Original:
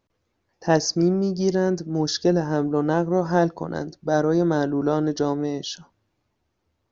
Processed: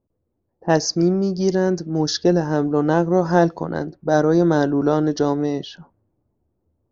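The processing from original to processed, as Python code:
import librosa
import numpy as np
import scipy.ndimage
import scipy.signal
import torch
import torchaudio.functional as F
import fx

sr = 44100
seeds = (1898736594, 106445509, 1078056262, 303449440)

y = fx.env_lowpass(x, sr, base_hz=520.0, full_db=-18.5)
y = fx.rider(y, sr, range_db=10, speed_s=2.0)
y = F.gain(torch.from_numpy(y), 3.0).numpy()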